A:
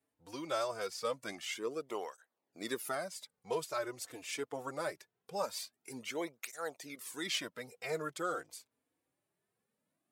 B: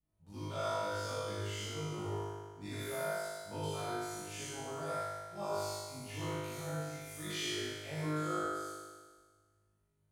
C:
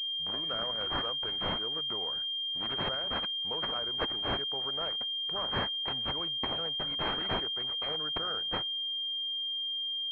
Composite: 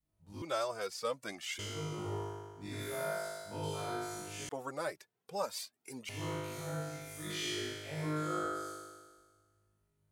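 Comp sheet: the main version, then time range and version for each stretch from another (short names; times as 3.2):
B
0.42–1.59 from A
4.49–6.09 from A
not used: C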